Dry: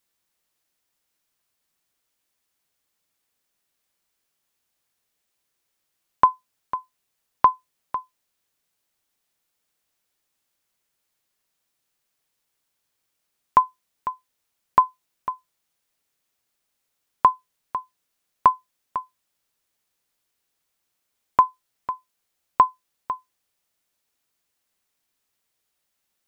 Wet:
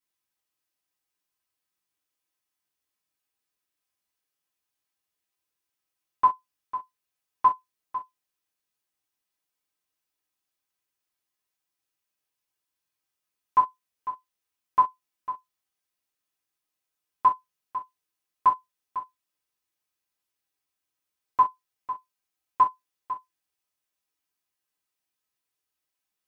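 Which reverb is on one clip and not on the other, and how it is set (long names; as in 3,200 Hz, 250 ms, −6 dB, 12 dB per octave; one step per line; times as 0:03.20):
reverb whose tail is shaped and stops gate 90 ms falling, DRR −7.5 dB
level −16 dB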